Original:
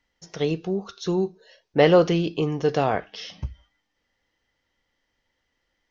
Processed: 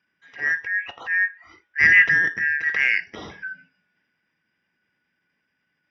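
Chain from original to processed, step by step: four frequency bands reordered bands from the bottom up 3142; Savitzky-Golay filter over 25 samples; transient shaper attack -10 dB, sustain +3 dB; high-pass 80 Hz; trim +3.5 dB

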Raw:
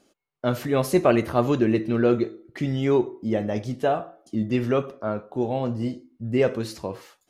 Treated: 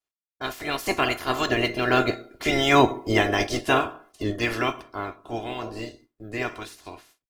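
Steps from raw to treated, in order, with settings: spectral peaks clipped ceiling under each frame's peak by 23 dB; Doppler pass-by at 3.03 s, 22 m/s, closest 17 m; gate with hold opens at -49 dBFS; comb 2.9 ms, depth 53%; trim +3.5 dB; IMA ADPCM 176 kbps 44.1 kHz

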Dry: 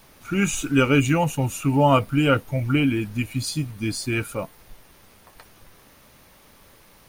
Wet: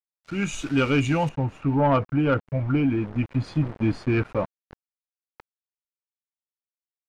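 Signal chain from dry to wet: small samples zeroed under -33.5 dBFS; level rider gain up to 16 dB; low-pass 5.4 kHz 12 dB/octave, from 1.29 s 1.6 kHz; saturation -6 dBFS, distortion -18 dB; trim -6.5 dB

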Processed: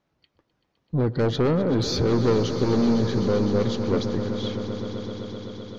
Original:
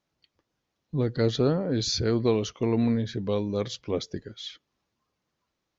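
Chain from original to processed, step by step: low-pass 1.9 kHz 6 dB/octave; saturation -24.5 dBFS, distortion -9 dB; echo with a slow build-up 128 ms, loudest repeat 5, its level -14 dB; trim +7.5 dB

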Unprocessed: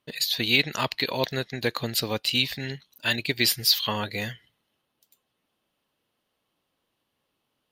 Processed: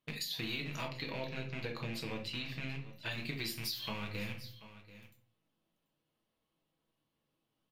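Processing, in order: rattle on loud lows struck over -39 dBFS, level -17 dBFS; bass shelf 400 Hz +5 dB; feedback comb 170 Hz, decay 0.65 s, harmonics all, mix 50%; delay 735 ms -21.5 dB; reverberation RT60 0.40 s, pre-delay 6 ms, DRR 1 dB; compression, threshold -30 dBFS, peak gain reduction 11.5 dB; 0.88–3.12 s: treble shelf 7.8 kHz -11.5 dB; trim -6 dB

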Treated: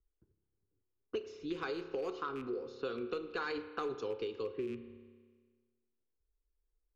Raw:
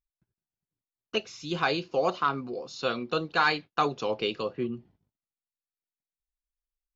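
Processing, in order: rattle on loud lows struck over -36 dBFS, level -29 dBFS; level-controlled noise filter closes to 870 Hz, open at -25 dBFS; FFT filter 100 Hz 0 dB, 150 Hz -18 dB, 440 Hz +1 dB, 640 Hz -17 dB, 1.4 kHz -9 dB, 2.2 kHz -13 dB, 3.7 kHz -12 dB, 9 kHz -7 dB; 3.42–3.95 s: transient shaper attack -2 dB, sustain +8 dB; compression, threshold -39 dBFS, peak gain reduction 13 dB; spring tank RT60 1.2 s, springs 30 ms, chirp 25 ms, DRR 10 dB; three bands compressed up and down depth 40%; trim +3.5 dB

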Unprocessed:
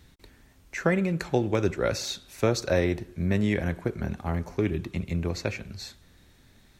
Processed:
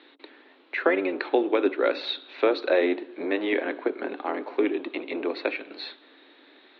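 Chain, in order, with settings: octave divider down 1 oct, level +1 dB; Chebyshev band-pass 280–4000 Hz, order 5; in parallel at +1 dB: compression, threshold -40 dBFS, peak gain reduction 18 dB; on the sum: trim +2.5 dB

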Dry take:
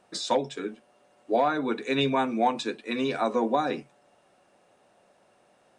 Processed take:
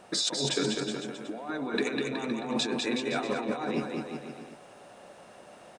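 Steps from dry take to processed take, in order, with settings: compressor with a negative ratio -36 dBFS, ratio -1; bouncing-ball echo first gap 200 ms, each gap 0.85×, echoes 5; trim +2 dB

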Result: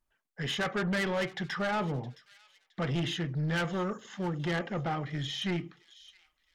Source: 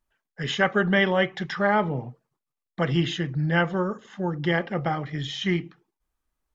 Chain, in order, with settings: 3.35–4.20 s: treble shelf 4.2 kHz +10 dB; saturation -24 dBFS, distortion -8 dB; on a send: feedback echo behind a high-pass 666 ms, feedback 42%, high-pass 3.1 kHz, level -15 dB; on the sum: trim -2.5 dB

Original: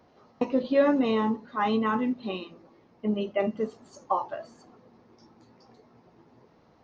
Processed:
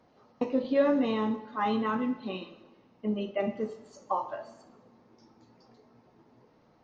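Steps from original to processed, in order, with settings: two-slope reverb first 0.74 s, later 2 s, from -18 dB, DRR 7.5 dB; trim -3.5 dB; MP3 48 kbps 44.1 kHz

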